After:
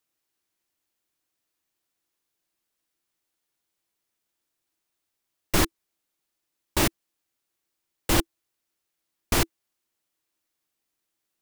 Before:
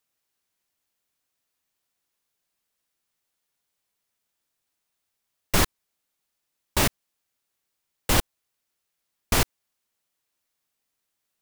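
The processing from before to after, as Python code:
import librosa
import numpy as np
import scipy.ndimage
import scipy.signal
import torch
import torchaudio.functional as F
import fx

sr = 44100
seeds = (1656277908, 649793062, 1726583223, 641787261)

y = fx.peak_eq(x, sr, hz=330.0, db=9.0, octaves=0.27)
y = y * librosa.db_to_amplitude(-1.5)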